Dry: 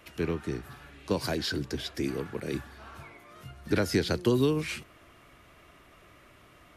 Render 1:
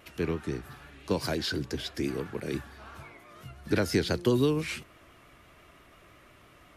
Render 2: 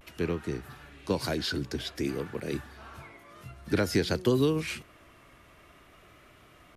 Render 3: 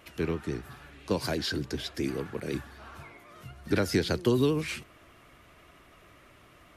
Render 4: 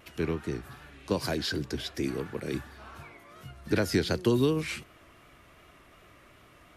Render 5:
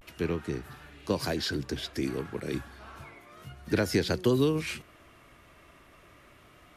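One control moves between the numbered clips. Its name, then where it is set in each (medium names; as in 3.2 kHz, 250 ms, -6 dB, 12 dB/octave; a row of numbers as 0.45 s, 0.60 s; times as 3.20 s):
vibrato, rate: 5.9 Hz, 0.52 Hz, 12 Hz, 2.7 Hz, 0.31 Hz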